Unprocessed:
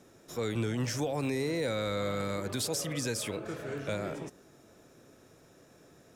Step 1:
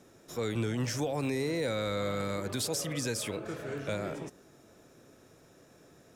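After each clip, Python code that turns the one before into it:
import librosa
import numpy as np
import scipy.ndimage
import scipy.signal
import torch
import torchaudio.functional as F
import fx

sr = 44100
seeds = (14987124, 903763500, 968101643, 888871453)

y = x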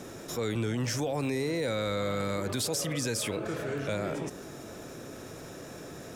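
y = fx.env_flatten(x, sr, amount_pct=50)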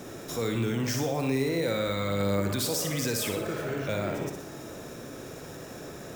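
y = fx.echo_feedback(x, sr, ms=60, feedback_pct=54, wet_db=-6.5)
y = np.repeat(y[::2], 2)[:len(y)]
y = y * librosa.db_to_amplitude(1.0)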